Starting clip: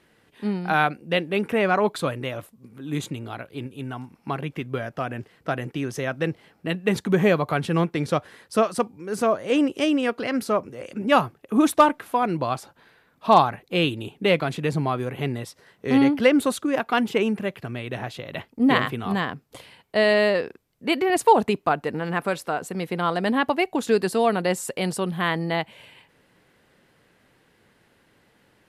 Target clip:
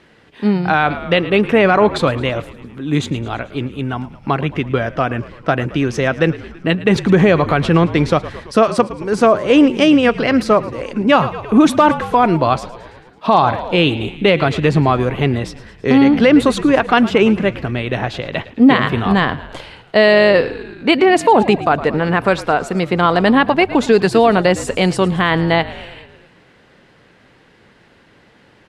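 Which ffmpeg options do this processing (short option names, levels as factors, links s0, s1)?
-filter_complex "[0:a]lowpass=5700,asplit=7[s0][s1][s2][s3][s4][s5][s6];[s1]adelay=110,afreqshift=-52,volume=0.126[s7];[s2]adelay=220,afreqshift=-104,volume=0.0822[s8];[s3]adelay=330,afreqshift=-156,volume=0.0531[s9];[s4]adelay=440,afreqshift=-208,volume=0.0347[s10];[s5]adelay=550,afreqshift=-260,volume=0.0224[s11];[s6]adelay=660,afreqshift=-312,volume=0.0146[s12];[s0][s7][s8][s9][s10][s11][s12]amix=inputs=7:normalize=0,alimiter=level_in=3.98:limit=0.891:release=50:level=0:latency=1,volume=0.891"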